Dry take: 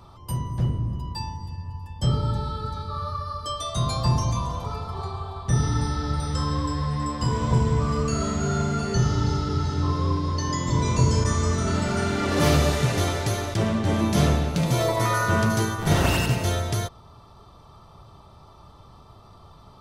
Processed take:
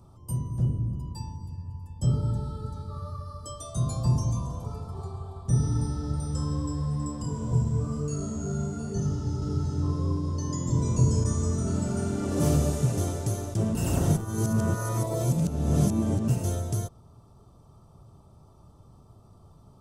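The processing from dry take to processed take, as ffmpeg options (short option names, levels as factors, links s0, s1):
-filter_complex "[0:a]asettb=1/sr,asplit=3[s0][s1][s2];[s0]atrim=end=7.224[s3];[s1]atrim=start=7.22:end=9.42,asetpts=PTS-STARTPTS,afade=t=in:d=0.004:c=qsin,afade=t=out:st=2.196:d=0.004:c=qsin,flanger=delay=20:depth=6:speed=1.1[s4];[s2]atrim=start=9.416[s5];[s3][s4]acrossfade=d=0.004:c1=hsin:c2=qsin[s6];[s6][s5]acrossfade=d=0.004:c1=qsin:c2=hsin,asplit=3[s7][s8][s9];[s7]atrim=end=13.752[s10];[s8]atrim=start=13.748:end=16.282,asetpts=PTS-STARTPTS,areverse[s11];[s9]atrim=start=16.278[s12];[s10][s11]acrossfade=d=0.004:c1=hsin:c2=hsin[s13];[s13][s12]acrossfade=d=0.004:c1=hsin:c2=hsin,equalizer=f=125:t=o:w=1:g=4,equalizer=f=250:t=o:w=1:g=3,equalizer=f=1000:t=o:w=1:g=-4,equalizer=f=2000:t=o:w=1:g=-12,equalizer=f=4000:t=o:w=1:g=-10,equalizer=f=8000:t=o:w=1:g=7,volume=0.531"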